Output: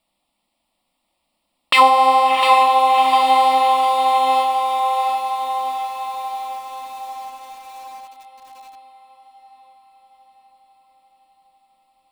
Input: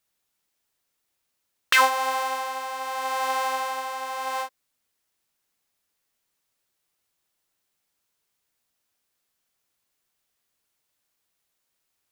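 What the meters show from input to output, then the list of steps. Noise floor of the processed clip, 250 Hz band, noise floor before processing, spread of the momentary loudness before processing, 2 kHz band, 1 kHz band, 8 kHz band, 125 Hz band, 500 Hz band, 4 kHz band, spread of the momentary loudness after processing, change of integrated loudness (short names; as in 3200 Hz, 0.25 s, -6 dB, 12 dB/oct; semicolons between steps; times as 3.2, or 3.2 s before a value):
-74 dBFS, +14.5 dB, -78 dBFS, 12 LU, +3.0 dB, +14.5 dB, +0.5 dB, n/a, +11.0 dB, +9.0 dB, 19 LU, +9.5 dB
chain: running mean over 7 samples; fixed phaser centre 420 Hz, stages 6; on a send: diffused feedback echo 0.721 s, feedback 59%, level -7 dB; on the sum: maximiser +16.5 dB; lo-fi delay 0.703 s, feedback 35%, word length 6-bit, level -8.5 dB; gain -1 dB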